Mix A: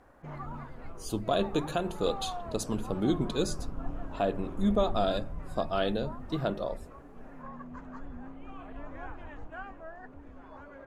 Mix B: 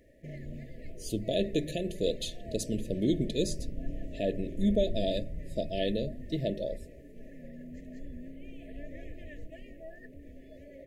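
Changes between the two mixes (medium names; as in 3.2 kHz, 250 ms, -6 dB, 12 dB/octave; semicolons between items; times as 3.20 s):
background: remove distance through air 67 m; master: add brick-wall FIR band-stop 680–1700 Hz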